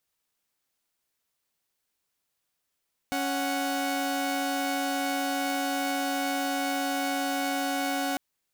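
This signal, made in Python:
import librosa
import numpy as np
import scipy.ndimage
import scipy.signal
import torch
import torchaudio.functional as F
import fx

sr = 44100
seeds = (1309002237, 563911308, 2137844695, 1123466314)

y = fx.chord(sr, length_s=5.05, notes=(61, 78), wave='saw', level_db=-27.0)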